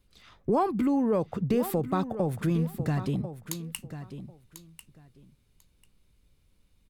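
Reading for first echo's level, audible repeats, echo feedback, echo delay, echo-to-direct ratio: −12.0 dB, 2, 17%, 1,044 ms, −12.0 dB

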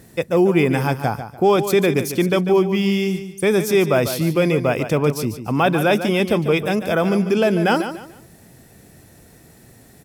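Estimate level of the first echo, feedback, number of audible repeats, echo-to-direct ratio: −10.5 dB, 30%, 3, −10.0 dB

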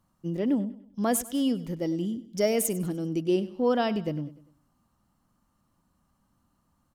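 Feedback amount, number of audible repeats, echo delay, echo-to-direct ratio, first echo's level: 42%, 3, 99 ms, −16.0 dB, −17.0 dB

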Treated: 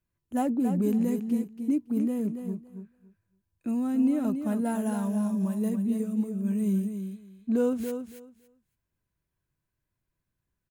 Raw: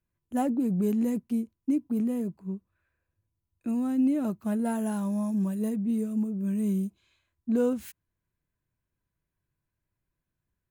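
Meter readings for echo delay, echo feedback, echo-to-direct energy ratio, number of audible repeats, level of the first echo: 280 ms, 17%, −8.0 dB, 2, −8.0 dB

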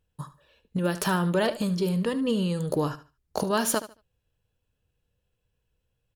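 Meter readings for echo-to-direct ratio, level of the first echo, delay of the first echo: −14.5 dB, −14.5 dB, 74 ms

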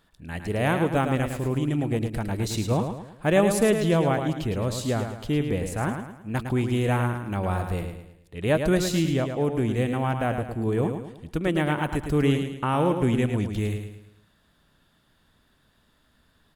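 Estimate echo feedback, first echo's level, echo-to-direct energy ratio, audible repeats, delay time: 42%, −7.0 dB, −6.0 dB, 4, 108 ms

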